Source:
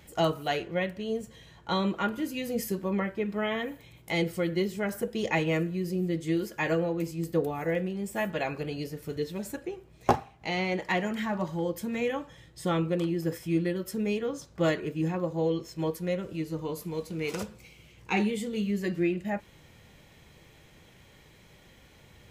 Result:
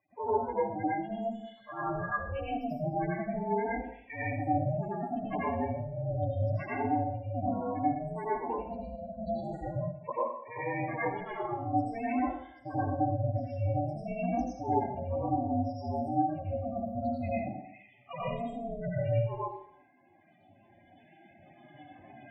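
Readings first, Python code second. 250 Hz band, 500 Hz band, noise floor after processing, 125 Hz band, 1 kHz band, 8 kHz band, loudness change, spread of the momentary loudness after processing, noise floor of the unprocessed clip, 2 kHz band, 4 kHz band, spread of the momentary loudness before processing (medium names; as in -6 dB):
-4.5 dB, -3.5 dB, -61 dBFS, 0.0 dB, +3.5 dB, under -20 dB, -2.5 dB, 8 LU, -56 dBFS, -6.5 dB, under -15 dB, 7 LU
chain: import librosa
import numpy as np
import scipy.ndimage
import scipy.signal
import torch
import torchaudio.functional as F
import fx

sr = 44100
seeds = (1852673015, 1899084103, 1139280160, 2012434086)

p1 = fx.recorder_agc(x, sr, target_db=-16.5, rise_db_per_s=6.0, max_gain_db=30)
p2 = scipy.signal.sosfilt(scipy.signal.butter(4, 330.0, 'highpass', fs=sr, output='sos'), p1)
p3 = fx.spec_topn(p2, sr, count=4)
p4 = scipy.signal.sosfilt(scipy.signal.butter(2, 4600.0, 'lowpass', fs=sr, output='sos'), p3)
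p5 = p4 * np.sin(2.0 * np.pi * 230.0 * np.arange(len(p4)) / sr)
p6 = fx.env_lowpass(p5, sr, base_hz=2000.0, full_db=-29.5)
p7 = p6 + fx.echo_single(p6, sr, ms=216, db=-22.5, dry=0)
p8 = fx.rev_plate(p7, sr, seeds[0], rt60_s=0.62, hf_ratio=0.9, predelay_ms=75, drr_db=-8.5)
y = p8 * 10.0 ** (-6.5 / 20.0)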